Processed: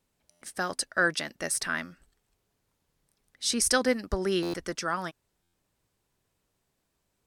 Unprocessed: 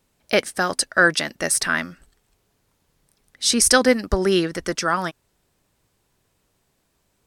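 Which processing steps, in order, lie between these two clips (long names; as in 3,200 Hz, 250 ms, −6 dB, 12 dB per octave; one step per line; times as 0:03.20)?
buffer that repeats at 0:00.30/0:04.42/0:05.42, samples 512, times 9
level −9 dB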